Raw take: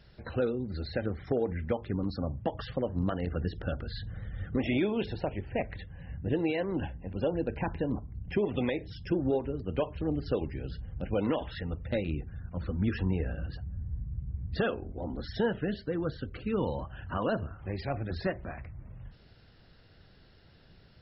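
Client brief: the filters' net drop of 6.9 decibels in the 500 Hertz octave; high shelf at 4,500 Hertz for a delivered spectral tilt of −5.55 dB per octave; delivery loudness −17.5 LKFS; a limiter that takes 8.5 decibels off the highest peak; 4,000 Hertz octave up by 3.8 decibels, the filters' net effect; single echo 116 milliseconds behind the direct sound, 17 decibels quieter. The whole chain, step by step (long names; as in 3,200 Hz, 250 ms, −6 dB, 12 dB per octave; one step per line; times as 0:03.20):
parametric band 500 Hz −8.5 dB
parametric band 4,000 Hz +8 dB
high-shelf EQ 4,500 Hz −6.5 dB
brickwall limiter −26.5 dBFS
single-tap delay 116 ms −17 dB
level +20.5 dB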